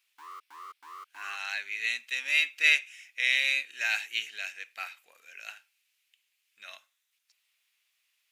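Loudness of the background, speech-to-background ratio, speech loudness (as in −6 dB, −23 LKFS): −47.0 LKFS, 19.5 dB, −27.5 LKFS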